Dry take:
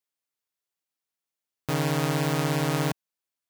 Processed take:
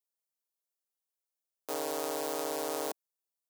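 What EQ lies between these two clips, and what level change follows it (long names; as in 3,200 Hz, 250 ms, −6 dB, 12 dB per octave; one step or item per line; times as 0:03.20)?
high-pass filter 410 Hz 24 dB per octave
parametric band 2,100 Hz −14 dB 2.2 octaves
0.0 dB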